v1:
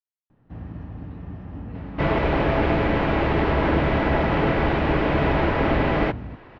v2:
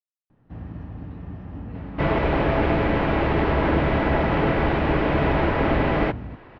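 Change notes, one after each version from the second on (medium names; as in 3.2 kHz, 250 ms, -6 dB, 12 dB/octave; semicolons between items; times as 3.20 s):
second sound: add treble shelf 6.2 kHz -6.5 dB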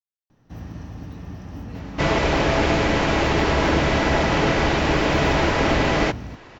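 master: remove distance through air 460 m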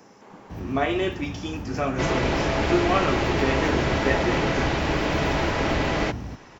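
speech: unmuted; second sound -4.5 dB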